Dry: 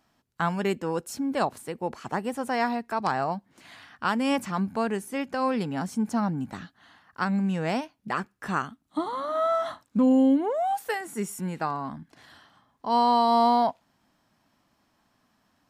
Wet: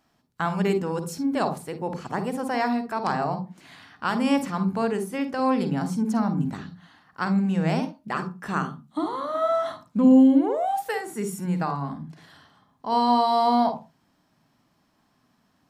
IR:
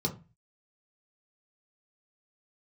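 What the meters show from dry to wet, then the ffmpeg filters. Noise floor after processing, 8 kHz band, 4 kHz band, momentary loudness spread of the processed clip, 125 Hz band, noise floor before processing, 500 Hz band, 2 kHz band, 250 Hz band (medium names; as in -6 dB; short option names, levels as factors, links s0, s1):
-67 dBFS, 0.0 dB, +1.0 dB, 11 LU, +5.0 dB, -70 dBFS, +1.5 dB, 0.0 dB, +4.0 dB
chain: -filter_complex "[0:a]asplit=2[s0][s1];[1:a]atrim=start_sample=2205,afade=t=out:st=0.22:d=0.01,atrim=end_sample=10143,adelay=49[s2];[s1][s2]afir=irnorm=-1:irlink=0,volume=0.211[s3];[s0][s3]amix=inputs=2:normalize=0"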